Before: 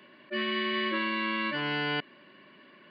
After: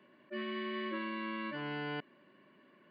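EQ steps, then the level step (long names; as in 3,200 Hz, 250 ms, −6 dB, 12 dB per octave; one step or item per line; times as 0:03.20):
high-shelf EQ 2,000 Hz −11.5 dB
−6.0 dB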